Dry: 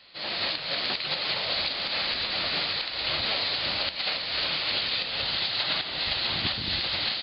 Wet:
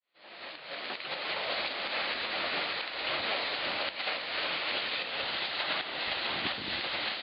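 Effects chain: opening faded in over 1.53 s; three-band isolator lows -15 dB, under 230 Hz, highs -23 dB, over 3300 Hz

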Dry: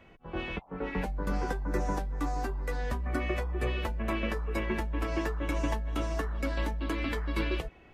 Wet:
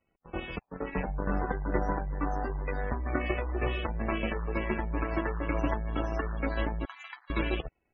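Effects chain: in parallel at -0.5 dB: limiter -28 dBFS, peak gain reduction 10.5 dB; 6.85–7.3 on the sum: brick-wall FIR high-pass 680 Hz; power-law curve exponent 2; loudest bins only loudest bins 64; gain +4.5 dB

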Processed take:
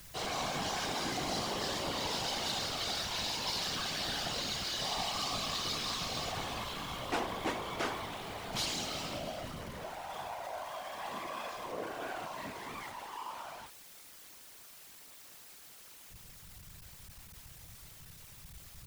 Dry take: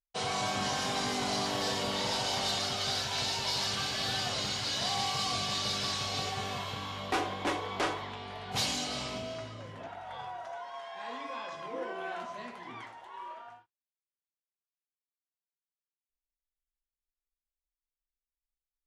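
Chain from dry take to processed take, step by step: zero-crossing step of -36.5 dBFS; whisperiser; gain -5.5 dB

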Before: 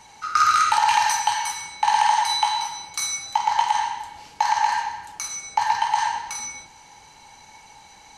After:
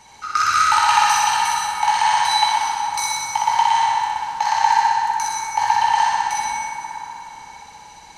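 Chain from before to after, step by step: on a send: flutter echo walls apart 10.7 m, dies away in 1.3 s; on the sum: plate-style reverb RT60 4 s, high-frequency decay 0.4×, pre-delay 90 ms, DRR 4 dB

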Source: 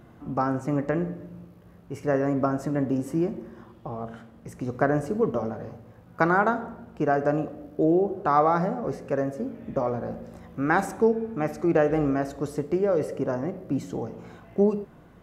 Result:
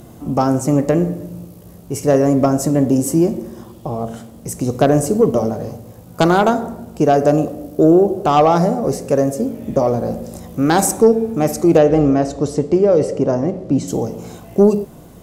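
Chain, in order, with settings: 11.78–13.88 air absorption 110 m; sine folder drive 4 dB, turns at -6.5 dBFS; EQ curve 670 Hz 0 dB, 1600 Hz -9 dB, 8000 Hz +14 dB; gain +3.5 dB

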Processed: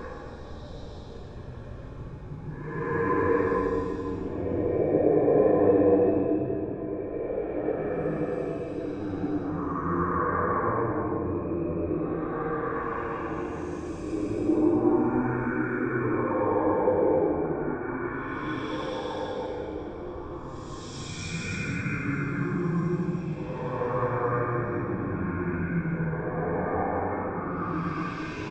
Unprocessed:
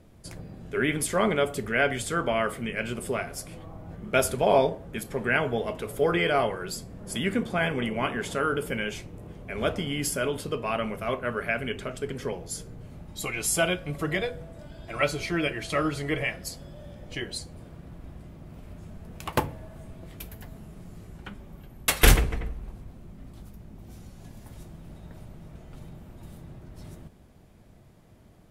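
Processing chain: low shelf 280 Hz -2 dB; notch 2700 Hz, Q 8.8; de-hum 88.42 Hz, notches 10; speakerphone echo 0.39 s, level -9 dB; in parallel at -1.5 dB: compressor 4:1, threshold -36 dBFS, peak gain reduction 19.5 dB; on the sum: treble ducked by the level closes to 1600 Hz, closed at -21 dBFS; pitch shift -5.5 st; resonator 51 Hz, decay 0.95 s, harmonics all, mix 50%; on a send at -18 dB: reverb RT60 3.6 s, pre-delay 0.213 s; on the sum: Paulstretch 6.1×, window 0.25 s, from 3.64; gain +3 dB

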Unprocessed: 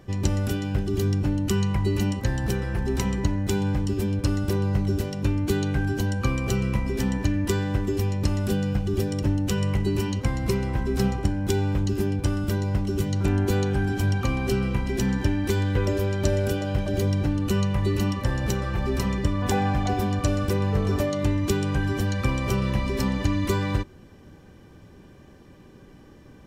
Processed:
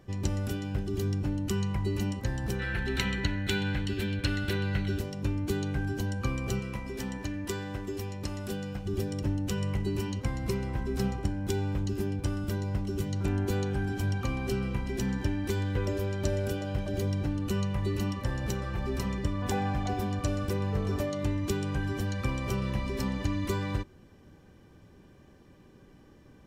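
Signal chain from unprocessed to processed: 2.6–4.99 spectral gain 1300–4500 Hz +12 dB; 6.59–8.86 low shelf 260 Hz -7.5 dB; gain -6.5 dB

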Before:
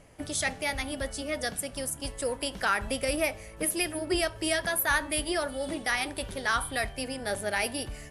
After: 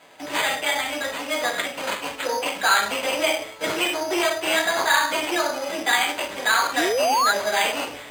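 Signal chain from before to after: low shelf 260 Hz -7 dB; reverb RT60 0.40 s, pre-delay 3 ms, DRR -4 dB; in parallel at -3 dB: limiter -16.5 dBFS, peak gain reduction 10.5 dB; on the sum: painted sound rise, 6.77–7.32, 280–1500 Hz -16 dBFS; careless resampling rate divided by 8×, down none, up hold; reverse; upward compressor, threshold -32 dBFS; reverse; weighting filter A; gain -3 dB

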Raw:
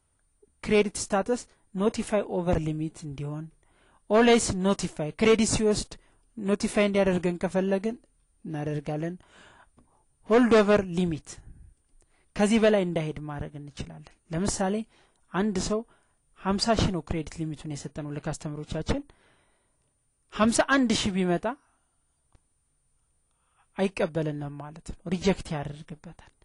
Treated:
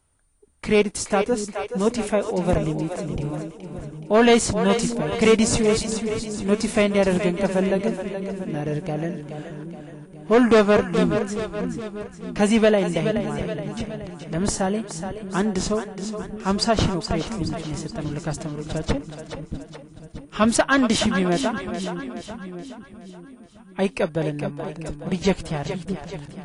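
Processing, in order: split-band echo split 360 Hz, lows 0.626 s, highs 0.423 s, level -8 dB; gain +4 dB

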